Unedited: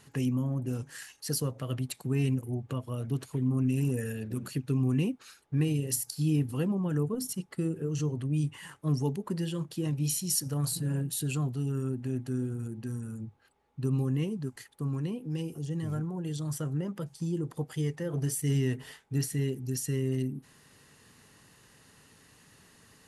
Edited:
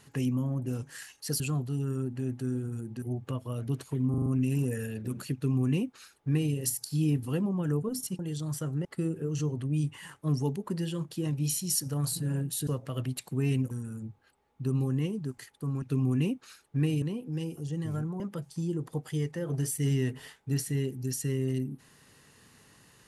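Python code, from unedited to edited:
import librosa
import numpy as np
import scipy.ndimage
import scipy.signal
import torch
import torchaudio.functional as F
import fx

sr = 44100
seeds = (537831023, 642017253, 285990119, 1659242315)

y = fx.edit(x, sr, fx.swap(start_s=1.4, length_s=1.04, other_s=11.27, other_length_s=1.62),
    fx.stutter(start_s=3.52, slice_s=0.04, count=5),
    fx.duplicate(start_s=4.6, length_s=1.2, to_s=15.0),
    fx.move(start_s=16.18, length_s=0.66, to_s=7.45), tone=tone)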